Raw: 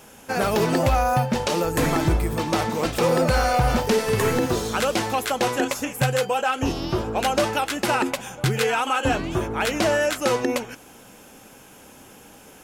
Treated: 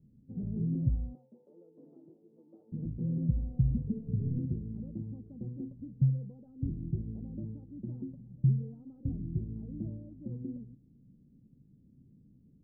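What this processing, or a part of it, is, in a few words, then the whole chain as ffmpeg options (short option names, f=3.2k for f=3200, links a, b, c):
the neighbour's flat through the wall: -filter_complex "[0:a]asettb=1/sr,asplit=3[a][b][c];[a]atrim=end=1.154[d];[b]atrim=start=1.15:end=2.72,asetpts=PTS-STARTPTS,afade=t=in:d=0.004:c=qsin,afade=t=out:st=1.566:d=0.004:c=qsin,highpass=f=450:w=0.5412,highpass=f=450:w=1.3066[e];[c]atrim=start=2.716[f];[d][e]acrossfade=d=0.004:c1=hsin:c2=qsin[g];[g][f]acrossfade=d=0.004:c1=qsin:c2=hsin,lowpass=f=240:w=0.5412,lowpass=f=240:w=1.3066,equalizer=f=140:t=o:w=0.69:g=7.5,volume=-8.5dB"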